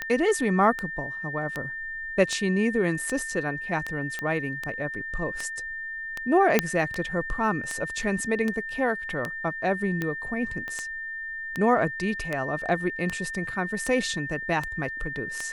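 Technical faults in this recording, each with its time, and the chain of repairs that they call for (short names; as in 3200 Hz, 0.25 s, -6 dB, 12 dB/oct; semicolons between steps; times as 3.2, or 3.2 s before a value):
tick 78 rpm -15 dBFS
tone 1800 Hz -32 dBFS
4.19 pop -17 dBFS
6.59 pop -4 dBFS
10.68 pop -22 dBFS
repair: de-click; notch 1800 Hz, Q 30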